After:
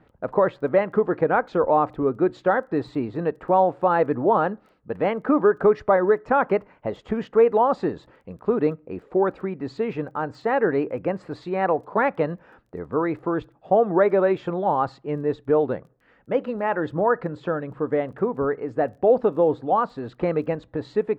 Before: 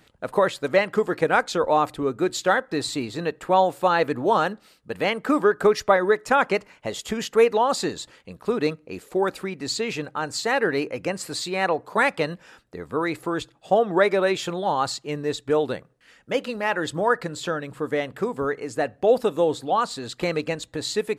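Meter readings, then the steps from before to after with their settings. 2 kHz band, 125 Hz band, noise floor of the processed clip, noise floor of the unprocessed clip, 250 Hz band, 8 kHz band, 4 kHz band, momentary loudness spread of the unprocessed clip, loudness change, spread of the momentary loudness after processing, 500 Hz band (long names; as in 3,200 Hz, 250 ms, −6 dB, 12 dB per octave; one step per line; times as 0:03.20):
−5.0 dB, +2.5 dB, −59 dBFS, −59 dBFS, +2.5 dB, below −25 dB, below −15 dB, 10 LU, +0.5 dB, 10 LU, +1.5 dB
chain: low-pass filter 1,200 Hz 12 dB per octave
in parallel at +1 dB: brickwall limiter −13 dBFS, peak gain reduction 7 dB
on the sum: surface crackle 12 per second −45 dBFS
level −4 dB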